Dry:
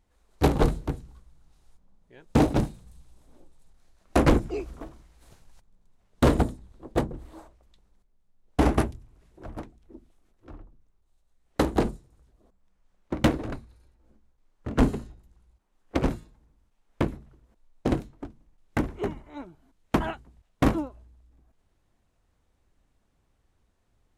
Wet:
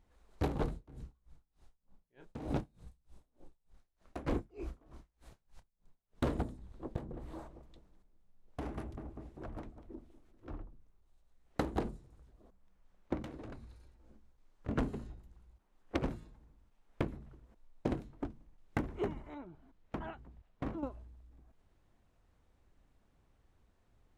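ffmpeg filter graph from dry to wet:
ffmpeg -i in.wav -filter_complex "[0:a]asettb=1/sr,asplit=3[link_01][link_02][link_03];[link_01]atrim=end=0.734[link_04];[link_02]atrim=start=0.73:end=6.24,asetpts=PTS-STARTPTS,afade=type=in:duration=0.004:curve=qsin,afade=type=out:start_time=5.506:duration=0.004:curve=qsin,asplit=2[link_05][link_06];[link_06]adelay=29,volume=-11dB[link_07];[link_05][link_07]amix=inputs=2:normalize=0,atrim=end_sample=242991,aeval=exprs='val(0)*pow(10,-28*(0.5-0.5*cos(2*PI*3.3*n/s))/20)':channel_layout=same[link_08];[link_03]atrim=start=6.236[link_09];[link_04][link_08]acrossfade=duration=0.004:curve1=hsin:curve2=qsin[link_10];[link_10][link_09]acrossfade=duration=0.004:curve1=qsin:curve2=hsin,asettb=1/sr,asplit=3[link_11][link_12][link_13];[link_11]atrim=end=6.964[link_14];[link_12]atrim=start=6.96:end=10.51,asetpts=PTS-STARTPTS,afade=type=in:duration=0.004:curve=qsin,afade=type=out:start_time=3.546:duration=0.004:curve=qsin,asplit=2[link_15][link_16];[link_16]adelay=196,lowpass=frequency=1200:poles=1,volume=-18.5dB,asplit=2[link_17][link_18];[link_18]adelay=196,lowpass=frequency=1200:poles=1,volume=0.45,asplit=2[link_19][link_20];[link_20]adelay=196,lowpass=frequency=1200:poles=1,volume=0.45,asplit=2[link_21][link_22];[link_22]adelay=196,lowpass=frequency=1200:poles=1,volume=0.45[link_23];[link_15][link_17][link_19][link_21][link_23]amix=inputs=5:normalize=0,atrim=end_sample=156555,acompressor=threshold=-40dB:ratio=5:attack=3.2:release=140:knee=1:detection=peak[link_24];[link_13]atrim=start=10.506[link_25];[link_14][link_24]acrossfade=duration=0.004:curve1=hsin:curve2=qsin[link_26];[link_26][link_25]acrossfade=duration=0.004:curve1=qsin:curve2=hsin,asettb=1/sr,asplit=3[link_27][link_28][link_29];[link_27]atrim=end=13.224[link_30];[link_28]atrim=start=13.22:end=14.69,asetpts=PTS-STARTPTS,afade=type=in:duration=0.004:curve=qsin,afade=type=out:start_time=1.466:duration=0.004:curve=qsin,equalizer=frequency=6400:width_type=o:width=2.1:gain=4,acompressor=threshold=-44dB:ratio=6:attack=3.2:release=140:knee=1:detection=peak[link_31];[link_29]atrim=start=14.686[link_32];[link_30][link_31]acrossfade=duration=0.004:curve1=hsin:curve2=qsin[link_33];[link_33][link_32]acrossfade=duration=0.004:curve1=qsin:curve2=hsin,asettb=1/sr,asplit=3[link_34][link_35][link_36];[link_34]atrim=end=19.344[link_37];[link_35]atrim=start=19.34:end=20.83,asetpts=PTS-STARTPTS,afade=type=in:duration=0.004:curve=qsin,afade=type=out:start_time=1.486:duration=0.004:curve=qsin,lowpass=frequency=3100:poles=1,acompressor=threshold=-49dB:ratio=2:attack=3.2:release=140:knee=1:detection=peak[link_38];[link_36]atrim=start=20.826[link_39];[link_37][link_38]acrossfade=duration=0.004:curve1=hsin:curve2=qsin[link_40];[link_40][link_39]acrossfade=duration=0.004:curve1=qsin:curve2=hsin,highshelf=frequency=4700:gain=-7.5,acompressor=threshold=-31dB:ratio=8" out.wav

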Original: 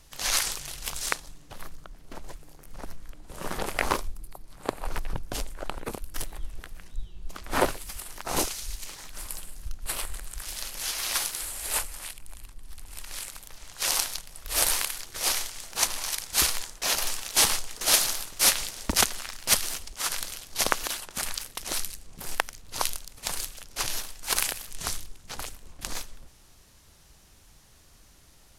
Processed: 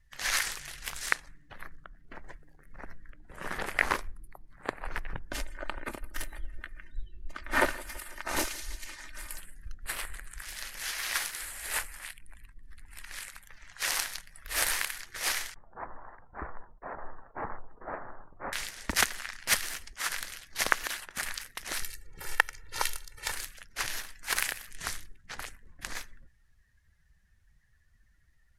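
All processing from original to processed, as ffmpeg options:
ffmpeg -i in.wav -filter_complex "[0:a]asettb=1/sr,asplit=3[link_01][link_02][link_03];[link_01]atrim=end=5.304[link_04];[link_02]atrim=start=5.3:end=9.39,asetpts=PTS-STARTPTS,afade=type=in:duration=0.004:curve=qsin,afade=type=out:start_time=4.086:duration=0.004:curve=qsin,aecho=1:1:3.3:0.5,atrim=end_sample=180369,aecho=1:1:166|332|498|664|830:0.1|0.057|0.0325|0.0185|0.0106,atrim=end_sample=180369[link_05];[link_03]atrim=start=9.386[link_06];[link_04][link_05]acrossfade=duration=0.004:curve1=hsin:curve2=qsin[link_07];[link_07][link_06]acrossfade=duration=0.004:curve1=qsin:curve2=hsin,asettb=1/sr,asplit=3[link_08][link_09][link_10];[link_08]atrim=end=15.544[link_11];[link_09]atrim=start=15.54:end=18.53,asetpts=PTS-STARTPTS,afade=type=in:duration=0.004:curve=qsin,afade=type=out:start_time=2.986:duration=0.004:curve=qsin,lowpass=frequency=1100:width=0.5412,lowpass=frequency=1100:width=1.3066,agate=range=-33dB:threshold=-46dB:ratio=3:release=100:detection=peak[link_12];[link_10]atrim=start=18.526[link_13];[link_11][link_12]acrossfade=duration=0.004:curve1=hsin:curve2=qsin[link_14];[link_14][link_13]acrossfade=duration=0.004:curve1=qsin:curve2=hsin,asettb=1/sr,asplit=3[link_15][link_16][link_17];[link_15]atrim=end=21.824[link_18];[link_16]atrim=start=21.82:end=23.32,asetpts=PTS-STARTPTS,afade=type=in:duration=0.004:curve=qsin,afade=type=out:start_time=1.496:duration=0.004:curve=qsin,aecho=1:1:2.2:0.73,atrim=end_sample=66150,acompressor=mode=upward:threshold=-34dB:ratio=2.5:attack=3.2:release=140:knee=2.83:detection=peak[link_19];[link_17]atrim=start=23.316[link_20];[link_18][link_19]acrossfade=duration=0.004:curve1=hsin:curve2=qsin[link_21];[link_21][link_20]acrossfade=duration=0.004:curve1=qsin:curve2=hsin,equalizer=frequency=1800:width_type=o:width=0.88:gain=11.5,afftdn=noise_reduction=18:noise_floor=-49,volume=-6.5dB" out.wav

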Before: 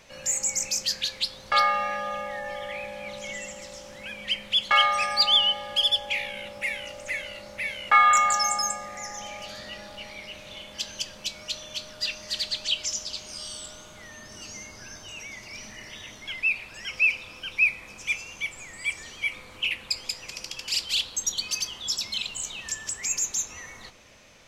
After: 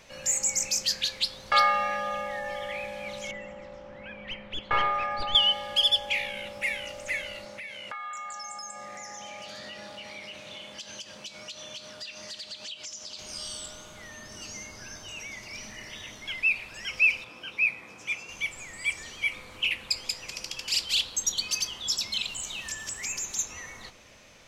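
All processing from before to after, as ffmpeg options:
ffmpeg -i in.wav -filter_complex "[0:a]asettb=1/sr,asplit=3[link_01][link_02][link_03];[link_01]atrim=end=3.314[link_04];[link_02]atrim=start=3.31:end=5.35,asetpts=PTS-STARTPTS,afade=type=in:duration=0.004:curve=qsin,afade=type=out:start_time=2.036:duration=0.004:curve=qsin,aeval=exprs='clip(val(0),-1,0.0562)':channel_layout=same,lowpass=1700[link_05];[link_03]atrim=start=5.346[link_06];[link_04][link_05]acrossfade=duration=0.004:curve1=hsin:curve2=qsin[link_07];[link_07][link_06]acrossfade=duration=0.004:curve1=qsin:curve2=hsin,asettb=1/sr,asplit=3[link_08][link_09][link_10];[link_08]atrim=end=7.454[link_11];[link_09]atrim=start=7.45:end=13.19,asetpts=PTS-STARTPTS,afade=type=in:duration=0.004:curve=qsin,afade=type=out:start_time=5.736:duration=0.004:curve=qsin,highpass=120,equalizer=frequency=13000:width_type=o:width=0.24:gain=-14,acompressor=threshold=-37dB:ratio=6:attack=3.2:release=140:knee=1:detection=peak[link_12];[link_10]atrim=start=13.186[link_13];[link_11][link_12]acrossfade=duration=0.004:curve1=hsin:curve2=qsin[link_14];[link_14][link_13]acrossfade=duration=0.004:curve1=qsin:curve2=hsin,asettb=1/sr,asplit=3[link_15][link_16][link_17];[link_15]atrim=end=17.244[link_18];[link_16]atrim=start=17.24:end=18.29,asetpts=PTS-STARTPTS,afade=type=in:duration=0.004:curve=qsin,afade=type=out:start_time=1.046:duration=0.004:curve=qsin,highpass=140,highshelf=frequency=2500:gain=-9,asplit=2[link_19][link_20];[link_20]adelay=17,volume=-5.5dB[link_21];[link_19][link_21]amix=inputs=2:normalize=0,atrim=end_sample=46305[link_22];[link_17]atrim=start=18.286[link_23];[link_18][link_22]acrossfade=duration=0.004:curve1=hsin:curve2=qsin[link_24];[link_24][link_23]acrossfade=duration=0.004:curve1=qsin:curve2=hsin,asettb=1/sr,asplit=3[link_25][link_26][link_27];[link_25]atrim=end=22.254[link_28];[link_26]atrim=start=22.25:end=23.39,asetpts=PTS-STARTPTS,afade=type=in:duration=0.004:curve=qsin,afade=type=out:start_time=1.136:duration=0.004:curve=qsin,bandreject=frequency=460:width=14,acrossover=split=3900[link_29][link_30];[link_30]acompressor=threshold=-38dB:ratio=4:attack=1:release=60[link_31];[link_29][link_31]amix=inputs=2:normalize=0,highshelf=frequency=6800:gain=7.5[link_32];[link_27]atrim=start=23.386[link_33];[link_28][link_32]acrossfade=duration=0.004:curve1=hsin:curve2=qsin[link_34];[link_34][link_33]acrossfade=duration=0.004:curve1=qsin:curve2=hsin" out.wav

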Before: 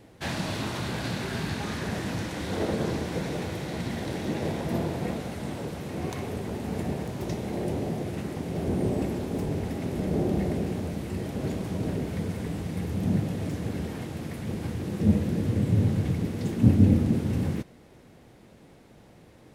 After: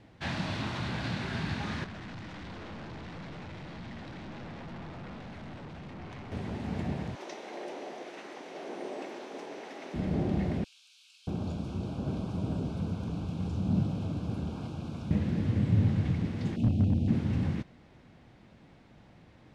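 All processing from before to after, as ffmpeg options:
ffmpeg -i in.wav -filter_complex "[0:a]asettb=1/sr,asplit=3[link_01][link_02][link_03];[link_01]atrim=end=1.844[link_04];[link_02]atrim=start=1.84:end=6.32,asetpts=PTS-STARTPTS,afade=type=in:duration=0.004:curve=qsin,afade=type=out:start_time=4.476:duration=0.004:curve=qsin,highshelf=frequency=8300:gain=-11,aeval=exprs='(tanh(79.4*val(0)+0.25)-tanh(0.25))/79.4':channel_layout=same[link_05];[link_03]atrim=start=6.316[link_06];[link_04][link_05]acrossfade=duration=0.004:curve1=hsin:curve2=qsin[link_07];[link_07][link_06]acrossfade=duration=0.004:curve1=qsin:curve2=hsin,asettb=1/sr,asplit=3[link_08][link_09][link_10];[link_08]atrim=end=7.154[link_11];[link_09]atrim=start=7.15:end=9.94,asetpts=PTS-STARTPTS,afade=type=in:duration=0.004:curve=qsin,afade=type=out:start_time=2.786:duration=0.004:curve=qsin,highpass=frequency=370:width=0.5412,highpass=frequency=370:width=1.3066,equalizer=frequency=6000:width=7.6:gain=6[link_12];[link_10]atrim=start=9.936[link_13];[link_11][link_12]acrossfade=duration=0.004:curve1=hsin:curve2=qsin[link_14];[link_14][link_13]acrossfade=duration=0.004:curve1=qsin:curve2=hsin,asettb=1/sr,asplit=3[link_15][link_16][link_17];[link_15]atrim=end=10.644[link_18];[link_16]atrim=start=10.64:end=15.11,asetpts=PTS-STARTPTS,afade=type=in:duration=0.004:curve=qsin,afade=type=out:start_time=4.466:duration=0.004:curve=qsin,asuperstop=centerf=1900:order=4:qfactor=2.2,acrossover=split=2600[link_19][link_20];[link_19]adelay=630[link_21];[link_21][link_20]amix=inputs=2:normalize=0,atrim=end_sample=197127[link_22];[link_17]atrim=start=15.106[link_23];[link_18][link_22]acrossfade=duration=0.004:curve1=hsin:curve2=qsin[link_24];[link_24][link_23]acrossfade=duration=0.004:curve1=qsin:curve2=hsin,asettb=1/sr,asplit=3[link_25][link_26][link_27];[link_25]atrim=end=16.564[link_28];[link_26]atrim=start=16.56:end=17.08,asetpts=PTS-STARTPTS,afade=type=in:duration=0.004:curve=qsin,afade=type=out:start_time=0.516:duration=0.004:curve=qsin,asuperstop=centerf=1400:order=12:qfactor=0.83,acrossover=split=200|490[link_29][link_30][link_31];[link_29]acompressor=threshold=-20dB:ratio=4[link_32];[link_30]acompressor=threshold=-30dB:ratio=4[link_33];[link_31]acompressor=threshold=-41dB:ratio=4[link_34];[link_32][link_33][link_34]amix=inputs=3:normalize=0,asoftclip=type=hard:threshold=-16dB[link_35];[link_27]atrim=start=17.076[link_36];[link_28][link_35]acrossfade=duration=0.004:curve1=hsin:curve2=qsin[link_37];[link_37][link_36]acrossfade=duration=0.004:curve1=qsin:curve2=hsin,lowpass=4400,equalizer=frequency=440:width_type=o:width=0.95:gain=-7,volume=-1.5dB" out.wav

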